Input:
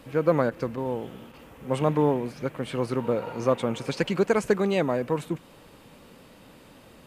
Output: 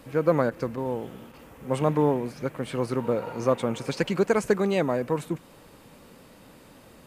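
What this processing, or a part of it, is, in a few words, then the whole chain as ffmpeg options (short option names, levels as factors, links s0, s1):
exciter from parts: -filter_complex "[0:a]asplit=2[s0][s1];[s1]highpass=f=2800:w=0.5412,highpass=f=2800:w=1.3066,asoftclip=type=tanh:threshold=0.015,volume=0.355[s2];[s0][s2]amix=inputs=2:normalize=0"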